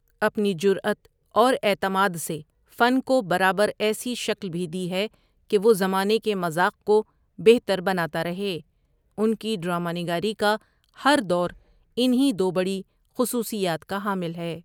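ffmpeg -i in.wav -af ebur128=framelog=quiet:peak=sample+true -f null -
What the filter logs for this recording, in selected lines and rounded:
Integrated loudness:
  I:         -23.9 LUFS
  Threshold: -34.3 LUFS
Loudness range:
  LRA:         3.1 LU
  Threshold: -44.1 LUFS
  LRA low:   -25.6 LUFS
  LRA high:  -22.5 LUFS
Sample peak:
  Peak:       -3.8 dBFS
True peak:
  Peak:       -3.8 dBFS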